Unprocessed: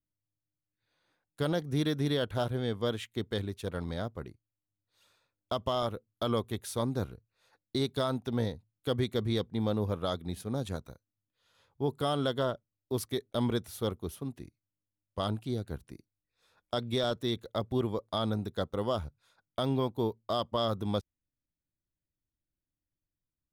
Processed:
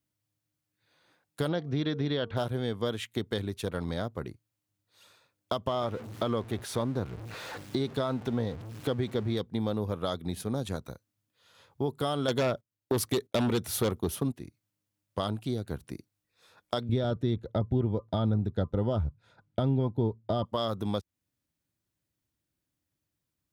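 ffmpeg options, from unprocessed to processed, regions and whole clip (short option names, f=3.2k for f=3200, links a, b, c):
-filter_complex "[0:a]asettb=1/sr,asplit=3[a][b][c];[a]atrim=end=1.484[d];[b]atrim=start=1.48:end=2.37,asetpts=PTS-STARTPTS,afade=t=in:d=0.004:c=qsin,afade=t=out:st=0.886:d=0.004:c=qsin,lowpass=f=4.7k:w=0.5412,lowpass=f=4.7k:w=1.3066,bandreject=f=228.8:t=h:w=4,bandreject=f=457.6:t=h:w=4,bandreject=f=686.4:t=h:w=4,bandreject=f=915.2:t=h:w=4,bandreject=f=1.144k:t=h:w=4[e];[c]atrim=start=2.366[f];[d][e]acrossfade=d=0.004:c1=hsin:c2=qsin[g];[g][f]acrossfade=d=0.004:c1=qsin:c2=hsin,asettb=1/sr,asplit=3[h][i][j];[h]atrim=end=5.674[k];[i]atrim=start=5.67:end=9.37,asetpts=PTS-STARTPTS,afade=t=in:d=0.004:c=qsin,afade=t=out:st=3.696:d=0.004:c=qsin,aeval=exprs='val(0)+0.5*0.00891*sgn(val(0))':c=same,lowpass=f=2.7k:p=1[l];[j]atrim=start=9.366[m];[k][l]acrossfade=d=0.004:c1=hsin:c2=qsin[n];[n][m]acrossfade=d=0.004:c1=qsin:c2=hsin,asettb=1/sr,asplit=3[o][p][q];[o]atrim=end=12.284[r];[p]atrim=start=12.28:end=14.32,asetpts=PTS-STARTPTS,afade=t=in:d=0.004:c=qsin,afade=t=out:st=2.036:d=0.004:c=qsin,agate=range=-17dB:threshold=-57dB:ratio=16:release=100:detection=peak,aeval=exprs='0.112*sin(PI/2*2*val(0)/0.112)':c=same[s];[q]atrim=start=14.316[t];[r][s]acrossfade=d=0.004:c1=hsin:c2=qsin[u];[u][t]acrossfade=d=0.004:c1=qsin:c2=hsin,asettb=1/sr,asplit=3[v][w][x];[v]atrim=end=16.894[y];[w]atrim=start=16.89:end=20.45,asetpts=PTS-STARTPTS,afade=t=in:d=0.004:c=qsin,afade=t=out:st=3.556:d=0.004:c=qsin,asuperstop=centerf=1100:order=20:qfactor=7.8,aemphasis=mode=reproduction:type=riaa[z];[x]atrim=start=20.446[aa];[y][z]acrossfade=d=0.004:c1=hsin:c2=qsin[ab];[ab][aa]acrossfade=d=0.004:c1=qsin:c2=hsin,highpass=79,acompressor=threshold=-39dB:ratio=2.5,volume=8.5dB"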